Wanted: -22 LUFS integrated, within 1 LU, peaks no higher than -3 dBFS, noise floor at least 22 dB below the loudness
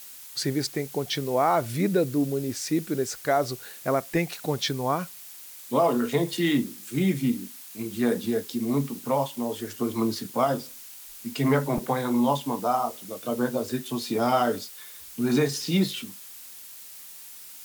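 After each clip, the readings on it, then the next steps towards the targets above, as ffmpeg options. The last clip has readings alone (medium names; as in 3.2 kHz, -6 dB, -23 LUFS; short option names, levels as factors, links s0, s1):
noise floor -44 dBFS; noise floor target -49 dBFS; loudness -26.5 LUFS; peak level -11.5 dBFS; loudness target -22.0 LUFS
-> -af "afftdn=nr=6:nf=-44"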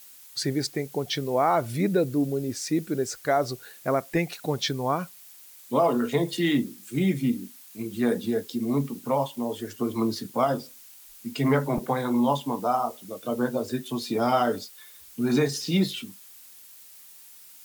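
noise floor -49 dBFS; loudness -27.0 LUFS; peak level -11.5 dBFS; loudness target -22.0 LUFS
-> -af "volume=1.78"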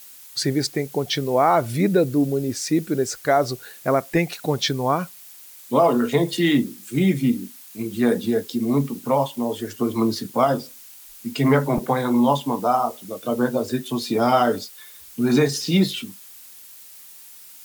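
loudness -22.0 LUFS; peak level -6.5 dBFS; noise floor -44 dBFS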